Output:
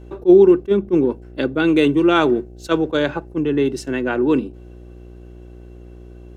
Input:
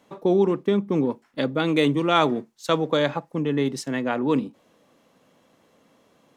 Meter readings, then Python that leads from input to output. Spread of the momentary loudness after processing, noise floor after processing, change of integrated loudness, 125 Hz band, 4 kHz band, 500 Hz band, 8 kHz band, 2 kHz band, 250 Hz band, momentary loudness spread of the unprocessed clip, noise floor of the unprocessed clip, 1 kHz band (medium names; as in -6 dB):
11 LU, -40 dBFS, +6.0 dB, +1.0 dB, +0.5 dB, +7.0 dB, 0.0 dB, +5.0 dB, +6.5 dB, 7 LU, -62 dBFS, +0.5 dB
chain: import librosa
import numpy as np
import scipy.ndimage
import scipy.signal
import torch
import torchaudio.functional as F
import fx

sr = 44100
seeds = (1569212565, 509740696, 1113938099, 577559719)

y = fx.dmg_buzz(x, sr, base_hz=60.0, harmonics=13, level_db=-40.0, tilt_db=-8, odd_only=False)
y = fx.small_body(y, sr, hz=(360.0, 1500.0, 2700.0), ring_ms=40, db=13)
y = fx.attack_slew(y, sr, db_per_s=480.0)